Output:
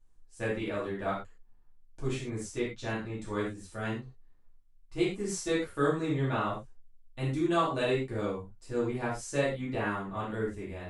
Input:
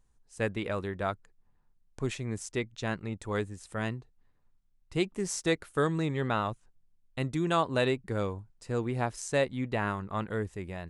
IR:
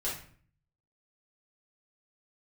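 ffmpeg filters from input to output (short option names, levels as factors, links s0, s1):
-filter_complex "[1:a]atrim=start_sample=2205,atrim=end_sample=4410,asetrate=34398,aresample=44100[s0];[0:a][s0]afir=irnorm=-1:irlink=0,volume=0.447"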